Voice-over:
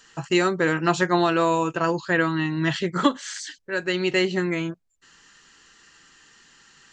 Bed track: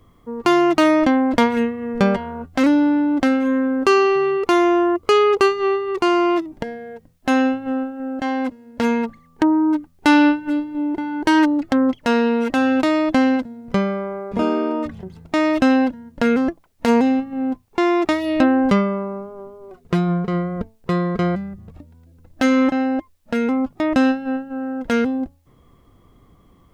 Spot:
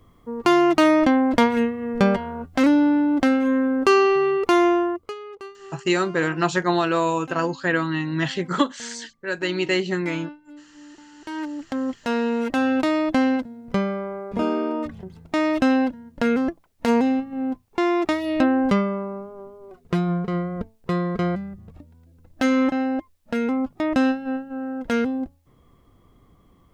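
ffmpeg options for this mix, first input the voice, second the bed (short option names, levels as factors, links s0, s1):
-filter_complex "[0:a]adelay=5550,volume=0.944[s0];[1:a]volume=7.94,afade=t=out:st=4.66:d=0.49:silence=0.0841395,afade=t=in:st=11.17:d=1.37:silence=0.105925[s1];[s0][s1]amix=inputs=2:normalize=0"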